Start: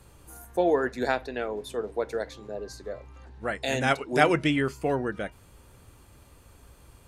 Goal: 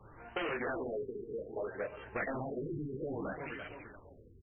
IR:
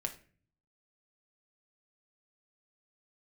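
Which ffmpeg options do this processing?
-filter_complex "[0:a]equalizer=frequency=68:width=4.6:gain=-10.5,asplit=2[link_01][link_02];[link_02]aecho=0:1:540|1080|1620:0.168|0.0638|0.0242[link_03];[link_01][link_03]amix=inputs=2:normalize=0,acrossover=split=470[link_04][link_05];[link_05]acompressor=threshold=-38dB:ratio=2[link_06];[link_04][link_06]amix=inputs=2:normalize=0,highshelf=frequency=9500:gain=-9.5,agate=range=-11dB:threshold=-37dB:ratio=16:detection=peak,asplit=2[link_07][link_08];[link_08]aecho=0:1:26|47:0.708|0.299[link_09];[link_07][link_09]amix=inputs=2:normalize=0,asoftclip=type=tanh:threshold=-36dB,flanger=delay=9.3:depth=7.3:regen=-41:speed=0.32:shape=triangular,acompressor=threshold=-48dB:ratio=6,crystalizer=i=9.5:c=0,atempo=1.6,afftfilt=real='re*lt(b*sr/1024,440*pow(3200/440,0.5+0.5*sin(2*PI*0.62*pts/sr)))':imag='im*lt(b*sr/1024,440*pow(3200/440,0.5+0.5*sin(2*PI*0.62*pts/sr)))':win_size=1024:overlap=0.75,volume=11.5dB"

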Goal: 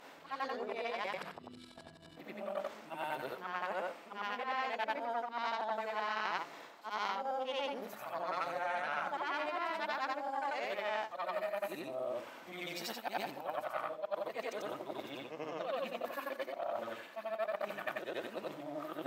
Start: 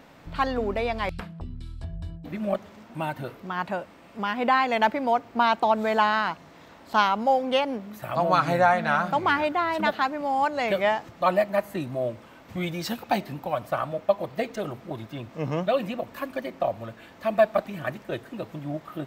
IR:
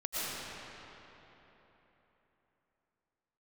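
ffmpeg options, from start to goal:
-af "afftfilt=real='re':imag='-im':win_size=8192:overlap=0.75,areverse,acompressor=threshold=-41dB:ratio=6,areverse,aeval=exprs='0.0376*(cos(1*acos(clip(val(0)/0.0376,-1,1)))-cos(1*PI/2))+0.0168*(cos(2*acos(clip(val(0)/0.0376,-1,1)))-cos(2*PI/2))':channel_layout=same,highpass=400,volume=5.5dB"

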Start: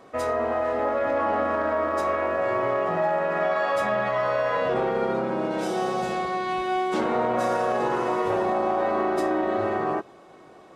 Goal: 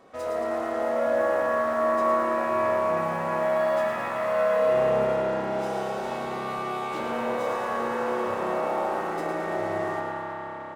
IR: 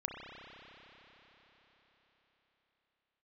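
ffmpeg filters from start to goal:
-filter_complex "[0:a]asettb=1/sr,asplit=3[link_01][link_02][link_03];[link_01]atrim=end=5.044[link_04];[link_02]atrim=start=5.04:end=5.98,asetpts=PTS-STARTPTS,afade=type=in:duration=0.004:curve=qsin,afade=type=out:start_time=0.936:duration=0.004:curve=qsin,highpass=270[link_05];[link_03]atrim=start=5.976[link_06];[link_04][link_05]acrossfade=duration=0.004:curve1=hsin:curve2=qsin[link_07];[link_07][link_06]acrossfade=duration=0.004:curve1=qsin:curve2=hsin,asplit=2[link_08][link_09];[link_09]aeval=exprs='0.0119*(abs(mod(val(0)/0.0119+3,4)-2)-1)':channel_layout=same,volume=-5dB[link_10];[link_08][link_10]amix=inputs=2:normalize=0,asplit=9[link_11][link_12][link_13][link_14][link_15][link_16][link_17][link_18][link_19];[link_12]adelay=111,afreqshift=75,volume=-6dB[link_20];[link_13]adelay=222,afreqshift=150,volume=-10.4dB[link_21];[link_14]adelay=333,afreqshift=225,volume=-14.9dB[link_22];[link_15]adelay=444,afreqshift=300,volume=-19.3dB[link_23];[link_16]adelay=555,afreqshift=375,volume=-23.7dB[link_24];[link_17]adelay=666,afreqshift=450,volume=-28.2dB[link_25];[link_18]adelay=777,afreqshift=525,volume=-32.6dB[link_26];[link_19]adelay=888,afreqshift=600,volume=-37.1dB[link_27];[link_11][link_20][link_21][link_22][link_23][link_24][link_25][link_26][link_27]amix=inputs=9:normalize=0[link_28];[1:a]atrim=start_sample=2205[link_29];[link_28][link_29]afir=irnorm=-1:irlink=0,volume=-7dB"

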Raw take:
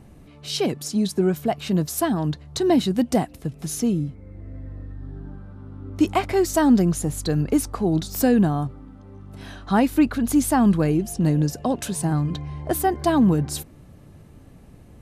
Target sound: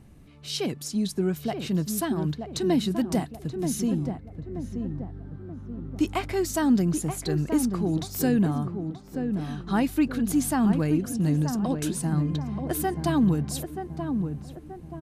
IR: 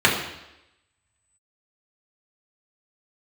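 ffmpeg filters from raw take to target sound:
-filter_complex "[0:a]equalizer=frequency=630:width=0.78:gain=-5,asplit=2[link_01][link_02];[link_02]adelay=930,lowpass=frequency=1100:poles=1,volume=-6dB,asplit=2[link_03][link_04];[link_04]adelay=930,lowpass=frequency=1100:poles=1,volume=0.49,asplit=2[link_05][link_06];[link_06]adelay=930,lowpass=frequency=1100:poles=1,volume=0.49,asplit=2[link_07][link_08];[link_08]adelay=930,lowpass=frequency=1100:poles=1,volume=0.49,asplit=2[link_09][link_10];[link_10]adelay=930,lowpass=frequency=1100:poles=1,volume=0.49,asplit=2[link_11][link_12];[link_12]adelay=930,lowpass=frequency=1100:poles=1,volume=0.49[link_13];[link_03][link_05][link_07][link_09][link_11][link_13]amix=inputs=6:normalize=0[link_14];[link_01][link_14]amix=inputs=2:normalize=0,volume=-3.5dB"

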